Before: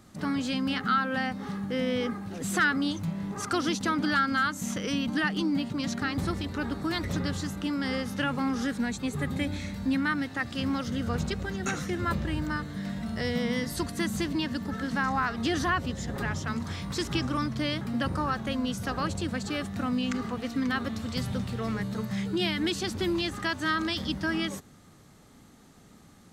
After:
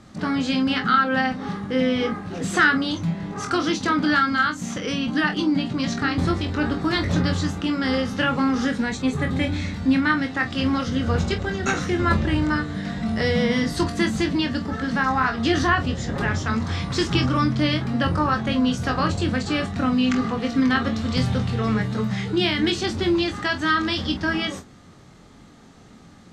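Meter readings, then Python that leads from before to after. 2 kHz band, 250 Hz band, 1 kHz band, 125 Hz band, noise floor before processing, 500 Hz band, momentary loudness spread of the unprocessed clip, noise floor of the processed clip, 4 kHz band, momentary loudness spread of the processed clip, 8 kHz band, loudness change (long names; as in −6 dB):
+7.0 dB, +7.0 dB, +7.5 dB, +8.5 dB, −54 dBFS, +7.5 dB, 6 LU, −48 dBFS, +6.5 dB, 6 LU, +2.5 dB, +7.5 dB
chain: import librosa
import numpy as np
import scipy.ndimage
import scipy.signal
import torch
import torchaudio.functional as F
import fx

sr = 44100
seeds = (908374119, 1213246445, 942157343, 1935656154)

p1 = scipy.signal.sosfilt(scipy.signal.butter(2, 6000.0, 'lowpass', fs=sr, output='sos'), x)
p2 = fx.rider(p1, sr, range_db=10, speed_s=2.0)
p3 = p2 + fx.room_early_taps(p2, sr, ms=(23, 47), db=(-6.0, -13.0), dry=0)
y = p3 * librosa.db_to_amplitude(6.0)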